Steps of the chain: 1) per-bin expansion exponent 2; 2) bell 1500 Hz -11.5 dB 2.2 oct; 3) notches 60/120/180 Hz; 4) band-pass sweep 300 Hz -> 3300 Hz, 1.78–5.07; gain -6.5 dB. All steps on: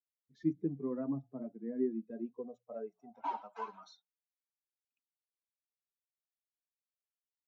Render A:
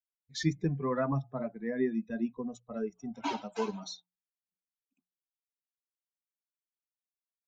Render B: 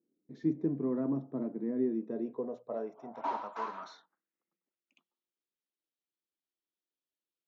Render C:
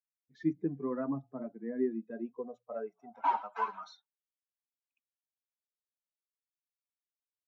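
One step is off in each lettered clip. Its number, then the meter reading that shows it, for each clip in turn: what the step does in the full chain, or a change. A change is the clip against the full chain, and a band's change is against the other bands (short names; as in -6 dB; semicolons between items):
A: 4, 4 kHz band +14.0 dB; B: 1, momentary loudness spread change -3 LU; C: 2, 2 kHz band +8.0 dB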